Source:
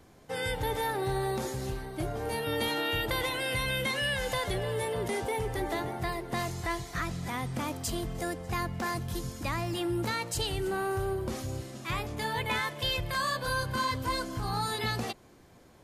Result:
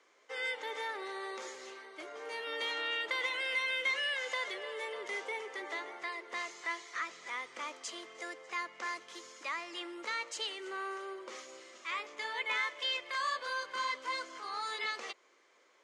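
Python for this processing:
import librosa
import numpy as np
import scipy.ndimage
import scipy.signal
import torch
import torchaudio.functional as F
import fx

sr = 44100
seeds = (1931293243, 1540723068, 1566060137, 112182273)

y = fx.cabinet(x, sr, low_hz=420.0, low_slope=24, high_hz=7400.0, hz=(740.0, 1200.0, 2100.0, 3100.0, 6400.0), db=(-8, 6, 9, 4, 4))
y = y * 10.0 ** (-7.0 / 20.0)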